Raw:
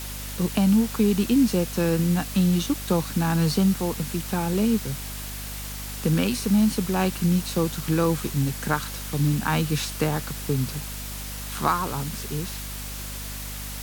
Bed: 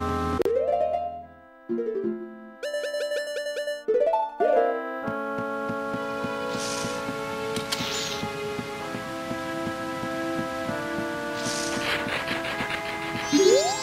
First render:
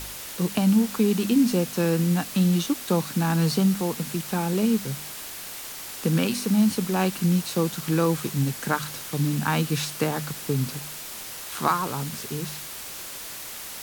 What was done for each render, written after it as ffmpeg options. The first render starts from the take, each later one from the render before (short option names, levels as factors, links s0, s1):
-af "bandreject=f=50:t=h:w=4,bandreject=f=100:t=h:w=4,bandreject=f=150:t=h:w=4,bandreject=f=200:t=h:w=4,bandreject=f=250:t=h:w=4"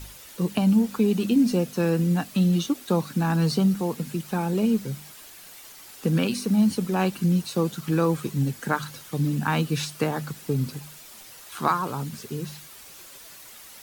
-af "afftdn=nr=10:nf=-37"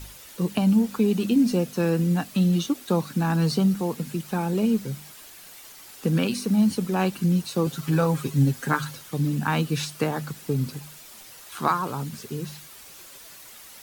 -filter_complex "[0:a]asettb=1/sr,asplit=3[s0][s1][s2];[s0]atrim=end=7.664[s3];[s1]atrim=start=7.66:end=8.95,asetpts=PTS-STARTPTS,afade=t=in:d=0.004:c=qsin,afade=t=out:st=1.286:d=0.004:c=qsin,aecho=1:1:7.4:0.73,atrim=end_sample=56889[s4];[s2]atrim=start=8.946[s5];[s3][s4]acrossfade=d=0.004:c1=hsin:c2=qsin[s6];[s6][s5]acrossfade=d=0.004:c1=qsin:c2=hsin"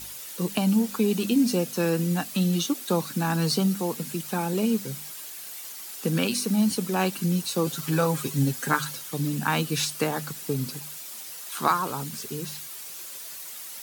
-af "highpass=f=190:p=1,highshelf=f=4200:g=8"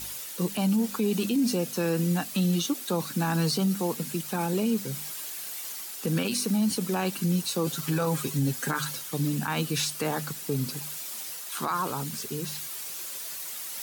-af "areverse,acompressor=mode=upward:threshold=0.0282:ratio=2.5,areverse,alimiter=limit=0.126:level=0:latency=1:release=28"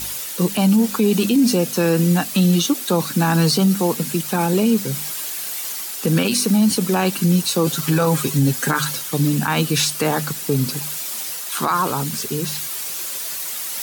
-af "volume=2.99"